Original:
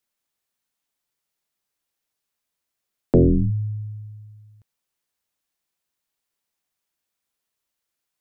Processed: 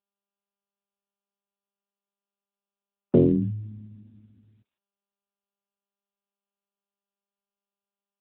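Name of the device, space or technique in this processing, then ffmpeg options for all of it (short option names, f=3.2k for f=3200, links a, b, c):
mobile call with aggressive noise cancelling: -filter_complex "[0:a]asettb=1/sr,asplit=3[a][b][c];[a]atrim=end=4.024[d];[b]atrim=start=4.02:end=4.42,asetpts=PTS-STARTPTS,afade=t=in:d=0.004:c=qsin,afade=t=out:st=0.396:d=0.004:c=qsin,asubboost=boost=5.5:cutoff=64[e];[c]atrim=start=4.416[f];[d][e]acrossfade=d=0.004:c1=hsin:c2=qsin[g];[g][f]acrossfade=d=0.004:c1=qsin:c2=hsin,highpass=f=170:p=1,afftdn=nr=35:nf=-52" -ar 8000 -c:a libopencore_amrnb -b:a 10200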